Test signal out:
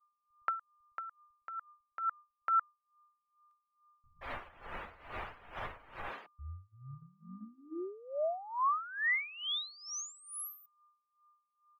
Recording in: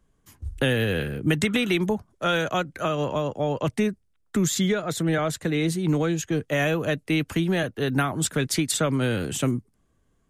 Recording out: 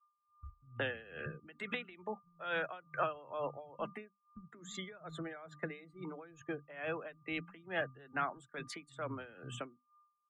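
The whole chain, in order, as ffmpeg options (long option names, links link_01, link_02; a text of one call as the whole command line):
ffmpeg -i in.wav -filter_complex "[0:a]acrossover=split=170[link_01][link_02];[link_02]adelay=180[link_03];[link_01][link_03]amix=inputs=2:normalize=0,aeval=exprs='val(0)+0.00316*sin(2*PI*1200*n/s)':channel_layout=same,lowshelf=frequency=290:gain=5,acompressor=threshold=-31dB:ratio=4,acrossover=split=590 2800:gain=0.2 1 0.251[link_04][link_05][link_06];[link_04][link_05][link_06]amix=inputs=3:normalize=0,bandreject=frequency=50:width_type=h:width=6,bandreject=frequency=100:width_type=h:width=6,bandreject=frequency=150:width_type=h:width=6,bandreject=frequency=200:width_type=h:width=6,bandreject=frequency=250:width_type=h:width=6,bandreject=frequency=300:width_type=h:width=6,afftdn=noise_reduction=25:noise_floor=-47,agate=range=-33dB:threshold=-43dB:ratio=3:detection=peak,aeval=exprs='val(0)*pow(10,-19*(0.5-0.5*cos(2*PI*2.3*n/s))/20)':channel_layout=same,volume=4dB" out.wav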